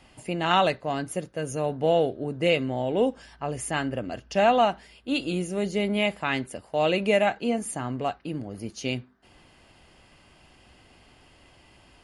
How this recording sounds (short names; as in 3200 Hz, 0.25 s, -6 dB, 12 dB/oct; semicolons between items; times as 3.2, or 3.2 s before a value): noise floor -57 dBFS; spectral tilt -4.0 dB/oct